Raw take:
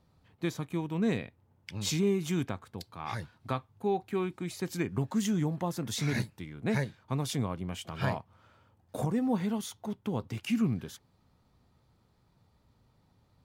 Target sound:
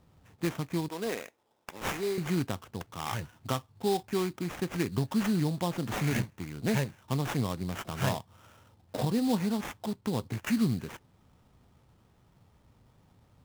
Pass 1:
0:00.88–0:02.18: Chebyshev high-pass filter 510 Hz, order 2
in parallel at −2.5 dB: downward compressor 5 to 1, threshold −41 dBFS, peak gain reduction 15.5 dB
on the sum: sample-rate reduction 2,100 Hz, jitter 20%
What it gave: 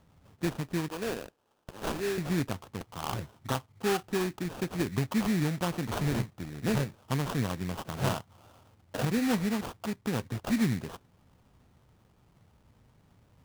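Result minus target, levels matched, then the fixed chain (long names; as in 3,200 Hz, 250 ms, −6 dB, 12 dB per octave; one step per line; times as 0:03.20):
sample-rate reduction: distortion +4 dB
0:00.88–0:02.18: Chebyshev high-pass filter 510 Hz, order 2
in parallel at −2.5 dB: downward compressor 5 to 1, threshold −41 dBFS, peak gain reduction 15.5 dB
on the sum: sample-rate reduction 4,400 Hz, jitter 20%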